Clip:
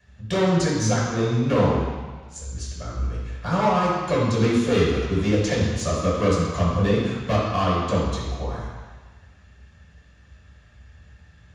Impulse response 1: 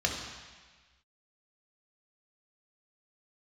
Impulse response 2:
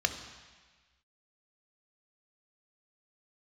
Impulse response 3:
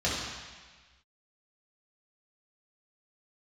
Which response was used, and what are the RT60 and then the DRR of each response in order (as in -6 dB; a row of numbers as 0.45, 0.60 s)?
3; 1.4, 1.4, 1.4 s; 0.5, 7.0, -7.5 dB